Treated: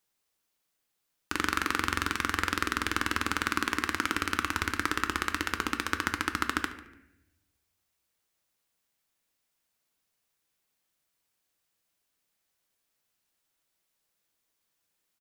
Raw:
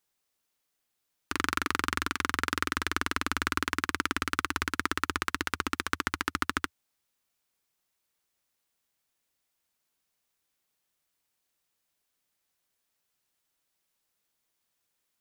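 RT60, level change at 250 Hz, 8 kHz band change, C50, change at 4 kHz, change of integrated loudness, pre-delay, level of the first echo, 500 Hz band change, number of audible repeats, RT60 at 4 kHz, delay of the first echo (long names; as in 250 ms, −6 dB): 0.85 s, +1.0 dB, +0.5 dB, 11.0 dB, +0.5 dB, +0.5 dB, 6 ms, −19.0 dB, +1.0 dB, 2, 0.60 s, 146 ms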